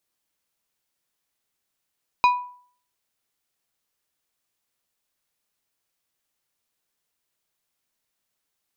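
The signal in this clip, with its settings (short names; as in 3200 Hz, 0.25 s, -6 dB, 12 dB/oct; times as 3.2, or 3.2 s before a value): glass hit plate, lowest mode 986 Hz, decay 0.51 s, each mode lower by 8 dB, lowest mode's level -11 dB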